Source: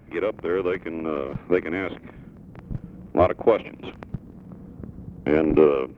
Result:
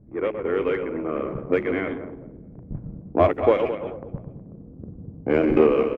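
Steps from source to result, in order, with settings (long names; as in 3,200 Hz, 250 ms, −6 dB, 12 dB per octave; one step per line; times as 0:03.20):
feedback delay that plays each chunk backwards 108 ms, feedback 60%, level −7 dB
mains-hum notches 60/120/180/240/300/360/420 Hz
on a send: echo with shifted repeats 342 ms, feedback 31%, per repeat +43 Hz, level −22.5 dB
on the sum: low-pass that shuts in the quiet parts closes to 350 Hz, open at −15.5 dBFS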